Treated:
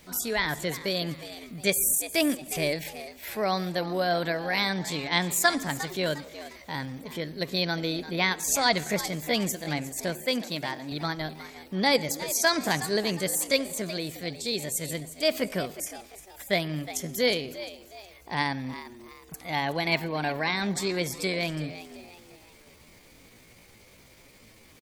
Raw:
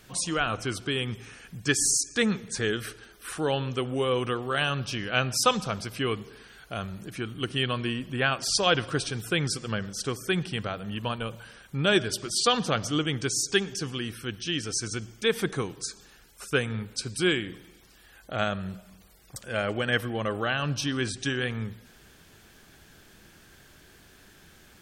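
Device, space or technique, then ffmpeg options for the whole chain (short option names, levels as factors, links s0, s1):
chipmunk voice: -filter_complex "[0:a]asettb=1/sr,asplit=3[s0][s1][s2];[s0]atrim=end=10.244[s3];[s1]atrim=start=10.24:end=10.92,asetpts=PTS-STARTPTS,afade=t=in:d=0.004:c=qsin,afade=t=out:st=0.676:d=0.004:c=qsin,highpass=f=140:p=1[s4];[s2]atrim=start=10.916[s5];[s3][s4]acrossfade=d=0.004:c1=hsin:c2=qsin[s6];[s6][s5]acrossfade=d=0.004:c1=qsin:c2=hsin,asplit=5[s7][s8][s9][s10][s11];[s8]adelay=355,afreqshift=69,volume=0.2[s12];[s9]adelay=710,afreqshift=138,volume=0.0741[s13];[s10]adelay=1065,afreqshift=207,volume=0.0272[s14];[s11]adelay=1420,afreqshift=276,volume=0.0101[s15];[s7][s12][s13][s14][s15]amix=inputs=5:normalize=0,asetrate=60591,aresample=44100,atempo=0.727827"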